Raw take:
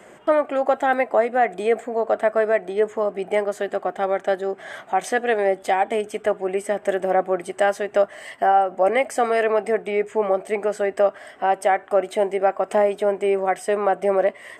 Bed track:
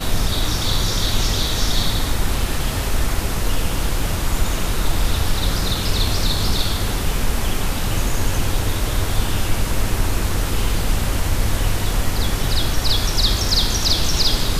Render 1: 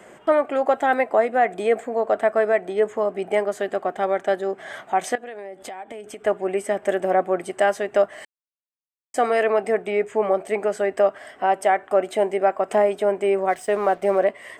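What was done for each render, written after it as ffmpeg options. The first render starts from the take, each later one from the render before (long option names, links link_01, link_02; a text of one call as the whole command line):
ffmpeg -i in.wav -filter_complex "[0:a]asettb=1/sr,asplit=3[link_01][link_02][link_03];[link_01]atrim=end=5.154[link_04];[link_02]atrim=start=5.15:end=6.26,asetpts=PTS-STARTPTS,afade=type=in:duration=0.004:curve=qsin,afade=type=out:start_time=1.106:duration=0.004:curve=qsin,acompressor=threshold=-32dB:ratio=8:attack=3.2:release=140:knee=1:detection=peak[link_05];[link_03]atrim=start=6.256[link_06];[link_04][link_05]acrossfade=duration=0.004:curve1=hsin:curve2=qsin[link_07];[link_07][link_06]acrossfade=duration=0.004:curve1=qsin:curve2=hsin,asplit=3[link_08][link_09][link_10];[link_08]afade=type=out:start_time=13.48:duration=0.02[link_11];[link_09]aeval=exprs='sgn(val(0))*max(abs(val(0))-0.00501,0)':channel_layout=same,afade=type=in:start_time=13.48:duration=0.02,afade=type=out:start_time=14.18:duration=0.02[link_12];[link_10]afade=type=in:start_time=14.18:duration=0.02[link_13];[link_11][link_12][link_13]amix=inputs=3:normalize=0,asplit=3[link_14][link_15][link_16];[link_14]atrim=end=8.25,asetpts=PTS-STARTPTS,afade=type=out:start_time=8.246:duration=0.004:curve=hsin[link_17];[link_15]atrim=start=8.25:end=9.14,asetpts=PTS-STARTPTS,volume=0[link_18];[link_16]atrim=start=9.14,asetpts=PTS-STARTPTS,afade=type=in:duration=0.004:curve=hsin[link_19];[link_17][link_18][link_19]concat=n=3:v=0:a=1" out.wav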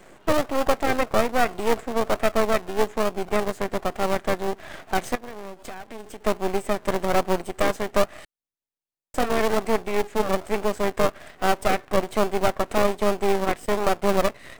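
ffmpeg -i in.wav -filter_complex "[0:a]asplit=2[link_01][link_02];[link_02]acrusher=samples=32:mix=1:aa=0.000001:lfo=1:lforange=19.2:lforate=1.2,volume=-6.5dB[link_03];[link_01][link_03]amix=inputs=2:normalize=0,aeval=exprs='max(val(0),0)':channel_layout=same" out.wav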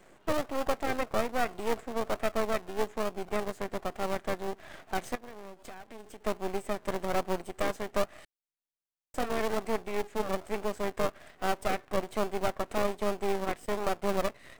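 ffmpeg -i in.wav -af "volume=-8.5dB" out.wav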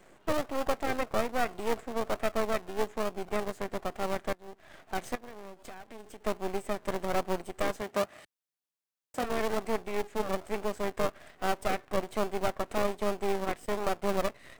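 ffmpeg -i in.wav -filter_complex "[0:a]asettb=1/sr,asplit=3[link_01][link_02][link_03];[link_01]atrim=end=7.814[link_04];[link_02]atrim=start=7.81:end=9.24,asetpts=PTS-STARTPTS,afade=type=in:duration=0.004:curve=qsin,afade=type=out:start_time=1.426:duration=0.004:curve=qsin,highpass=90[link_05];[link_03]atrim=start=9.236[link_06];[link_04][link_05]acrossfade=duration=0.004:curve1=hsin:curve2=qsin[link_07];[link_07][link_06]acrossfade=duration=0.004:curve1=qsin:curve2=hsin,asplit=2[link_08][link_09];[link_08]atrim=end=4.33,asetpts=PTS-STARTPTS,afade=type=out:start_time=4.326:duration=0.004:curve=hsin:silence=0.0841395[link_10];[link_09]atrim=start=4.33,asetpts=PTS-STARTPTS,afade=type=in:duration=0.77:silence=0.0841395[link_11];[link_10][link_11]concat=n=2:v=0:a=1" out.wav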